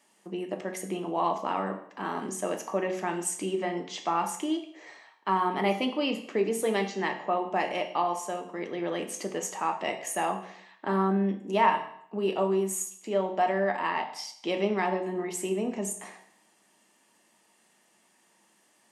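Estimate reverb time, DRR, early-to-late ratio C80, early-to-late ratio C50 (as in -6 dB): 0.65 s, 4.0 dB, 13.0 dB, 9.5 dB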